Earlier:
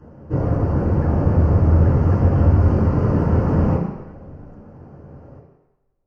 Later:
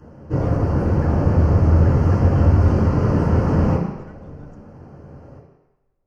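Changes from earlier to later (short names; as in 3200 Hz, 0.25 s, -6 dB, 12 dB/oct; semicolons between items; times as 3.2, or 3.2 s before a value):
speech +6.5 dB; master: add high shelf 2800 Hz +10 dB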